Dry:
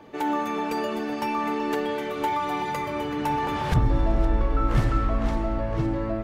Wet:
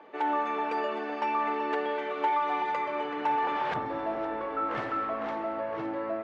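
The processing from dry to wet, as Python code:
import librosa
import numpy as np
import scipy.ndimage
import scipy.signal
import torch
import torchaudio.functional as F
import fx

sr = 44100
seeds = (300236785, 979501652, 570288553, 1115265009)

y = fx.bandpass_edges(x, sr, low_hz=470.0, high_hz=2500.0)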